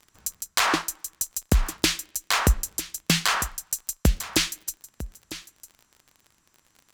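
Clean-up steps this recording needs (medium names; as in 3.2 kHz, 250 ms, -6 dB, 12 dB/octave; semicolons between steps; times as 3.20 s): de-click; inverse comb 951 ms -15 dB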